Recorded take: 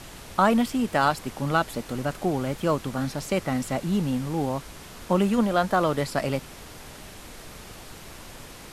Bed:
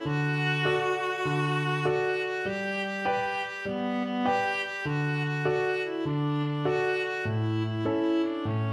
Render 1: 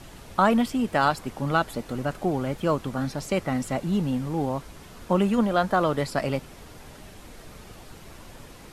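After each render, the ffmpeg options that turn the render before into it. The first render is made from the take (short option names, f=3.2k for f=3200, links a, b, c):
-af "afftdn=nr=6:nf=-44"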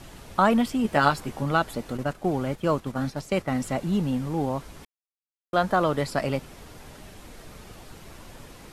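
-filter_complex "[0:a]asettb=1/sr,asplit=3[a][b][c];[a]atrim=end=0.834[d];[b]atrim=start=0.83:end=1.43,asetpts=PTS-STARTPTS,afade=t=in:d=0.004:c=qsin,afade=t=out:st=0.596:d=0.004:c=qsin,asplit=2[e][f];[f]adelay=14,volume=-5dB[g];[e][g]amix=inputs=2:normalize=0,atrim=end_sample=26460[h];[c]atrim=start=1.426[i];[d][h]acrossfade=d=0.004:c1=hsin:c2=qsin[j];[j][i]acrossfade=d=0.004:c1=qsin:c2=hsin,asettb=1/sr,asplit=3[k][l][m];[k]atrim=end=1.974[n];[l]atrim=start=1.97:end=3.51,asetpts=PTS-STARTPTS,afade=t=in:d=0.004:c=qsin,afade=t=out:st=1.536:d=0.004:c=qsin,agate=range=-7dB:threshold=-33dB:ratio=16:release=100:detection=peak[o];[m]atrim=start=3.506[p];[n][o]acrossfade=d=0.004:c1=hsin:c2=qsin[q];[q][p]acrossfade=d=0.004:c1=qsin:c2=hsin,asplit=3[r][s][t];[r]atrim=end=4.85,asetpts=PTS-STARTPTS,afade=t=out:st=4.846:d=0.004:c=hsin[u];[s]atrim=start=4.85:end=5.53,asetpts=PTS-STARTPTS,volume=0[v];[t]atrim=start=5.53,asetpts=PTS-STARTPTS,afade=t=in:d=0.004:c=hsin[w];[u][v][w]concat=n=3:v=0:a=1"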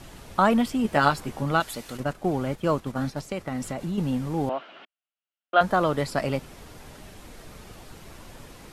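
-filter_complex "[0:a]asettb=1/sr,asplit=3[a][b][c];[a]atrim=end=1.604[d];[b]atrim=start=1.6:end=2,asetpts=PTS-STARTPTS,afade=t=in:d=0.004:c=qsin,afade=t=out:st=0.396:d=0.004:c=qsin,tiltshelf=f=1.4k:g=-6.5[e];[c]atrim=start=1.996[f];[d][e]acrossfade=d=0.004:c1=hsin:c2=qsin[g];[g][f]acrossfade=d=0.004:c1=qsin:c2=hsin,asettb=1/sr,asplit=3[h][i][j];[h]atrim=end=3.214[k];[i]atrim=start=3.21:end=3.98,asetpts=PTS-STARTPTS,afade=t=in:d=0.004:c=qsin,afade=t=out:st=0.766:d=0.004:c=qsin,acompressor=threshold=-26dB:ratio=5:attack=3.2:release=140:knee=1:detection=peak[l];[j]atrim=start=3.976[m];[k][l]acrossfade=d=0.004:c1=hsin:c2=qsin[n];[n][m]acrossfade=d=0.004:c1=qsin:c2=hsin,asettb=1/sr,asplit=3[o][p][q];[o]atrim=end=4.494[r];[p]atrim=start=4.49:end=5.61,asetpts=PTS-STARTPTS,afade=t=in:d=0.004:c=qsin,afade=t=out:st=1.116:d=0.004:c=qsin,highpass=f=280:w=0.5412,highpass=f=280:w=1.3066,equalizer=f=290:t=q:w=4:g=-5,equalizer=f=450:t=q:w=4:g=-7,equalizer=f=660:t=q:w=4:g=7,equalizer=f=970:t=q:w=4:g=-3,equalizer=f=1.4k:t=q:w=4:g=8,equalizer=f=2.9k:t=q:w=4:g=10,lowpass=f=3.6k:w=0.5412,lowpass=f=3.6k:w=1.3066[s];[q]atrim=start=5.606[t];[r][s]acrossfade=d=0.004:c1=hsin:c2=qsin[u];[u][t]acrossfade=d=0.004:c1=qsin:c2=hsin"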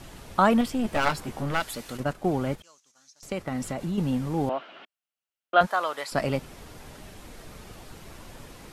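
-filter_complex "[0:a]asettb=1/sr,asplit=3[a][b][c];[a]atrim=end=0.614[d];[b]atrim=start=0.61:end=1.88,asetpts=PTS-STARTPTS,afade=t=in:d=0.004:c=qsin,afade=t=out:st=1.266:d=0.004:c=qsin,aeval=exprs='clip(val(0),-1,0.0398)':c=same[e];[c]atrim=start=1.876[f];[d][e]acrossfade=d=0.004:c1=hsin:c2=qsin[g];[g][f]acrossfade=d=0.004:c1=qsin:c2=hsin,asettb=1/sr,asplit=3[h][i][j];[h]atrim=end=2.624[k];[i]atrim=start=2.62:end=3.23,asetpts=PTS-STARTPTS,afade=t=in:d=0.004:c=qsin,afade=t=out:st=0.606:d=0.004:c=qsin,bandpass=f=6.3k:t=q:w=5.8[l];[j]atrim=start=3.226[m];[k][l]acrossfade=d=0.004:c1=hsin:c2=qsin[n];[n][m]acrossfade=d=0.004:c1=qsin:c2=hsin,asplit=3[o][p][q];[o]afade=t=out:st=5.65:d=0.02[r];[p]highpass=810,afade=t=in:st=5.65:d=0.02,afade=t=out:st=6.11:d=0.02[s];[q]afade=t=in:st=6.11:d=0.02[t];[r][s][t]amix=inputs=3:normalize=0"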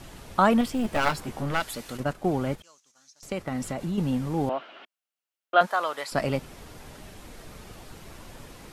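-filter_complex "[0:a]asettb=1/sr,asplit=3[a][b][c];[a]atrim=end=0.634[d];[b]atrim=start=0.63:end=1.22,asetpts=PTS-STARTPTS,afade=t=in:d=0.004:c=qsin,afade=t=out:st=0.586:d=0.004:c=qsin,acrusher=bits=8:mode=log:mix=0:aa=0.000001[e];[c]atrim=start=1.216[f];[d][e]acrossfade=d=0.004:c1=hsin:c2=qsin[g];[g][f]acrossfade=d=0.004:c1=qsin:c2=hsin,asettb=1/sr,asplit=3[h][i][j];[h]atrim=end=4.674[k];[i]atrim=start=4.67:end=5.8,asetpts=PTS-STARTPTS,afade=t=in:d=0.004:c=qsin,afade=t=out:st=1.126:d=0.004:c=qsin,highpass=230[l];[j]atrim=start=5.796[m];[k][l]acrossfade=d=0.004:c1=hsin:c2=qsin[n];[n][m]acrossfade=d=0.004:c1=qsin:c2=hsin"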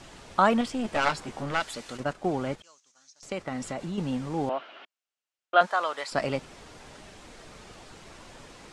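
-af "lowpass=f=8.6k:w=0.5412,lowpass=f=8.6k:w=1.3066,lowshelf=f=220:g=-8"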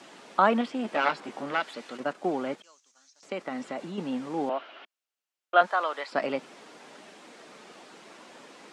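-filter_complex "[0:a]acrossover=split=4000[a][b];[b]acompressor=threshold=-58dB:ratio=4:attack=1:release=60[c];[a][c]amix=inputs=2:normalize=0,highpass=f=210:w=0.5412,highpass=f=210:w=1.3066"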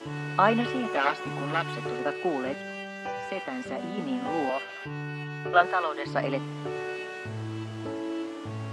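-filter_complex "[1:a]volume=-7dB[a];[0:a][a]amix=inputs=2:normalize=0"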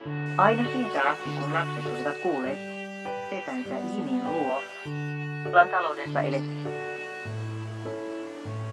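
-filter_complex "[0:a]asplit=2[a][b];[b]adelay=20,volume=-5dB[c];[a][c]amix=inputs=2:normalize=0,acrossover=split=3600[d][e];[e]adelay=260[f];[d][f]amix=inputs=2:normalize=0"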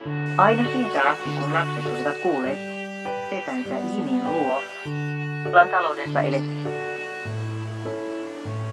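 -af "volume=4.5dB,alimiter=limit=-3dB:level=0:latency=1"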